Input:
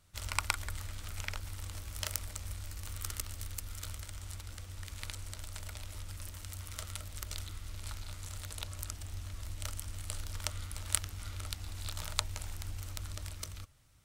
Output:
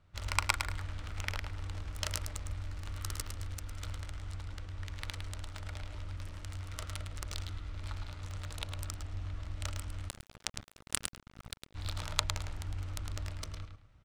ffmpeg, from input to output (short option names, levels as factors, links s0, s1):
-filter_complex "[0:a]aecho=1:1:107|214|321:0.501|0.11|0.0243,adynamicsmooth=sensitivity=7.5:basefreq=2600,asplit=3[s0][s1][s2];[s0]afade=t=out:st=10.08:d=0.02[s3];[s1]aeval=exprs='sgn(val(0))*max(abs(val(0))-0.015,0)':c=same,afade=t=in:st=10.08:d=0.02,afade=t=out:st=11.74:d=0.02[s4];[s2]afade=t=in:st=11.74:d=0.02[s5];[s3][s4][s5]amix=inputs=3:normalize=0,volume=1.33"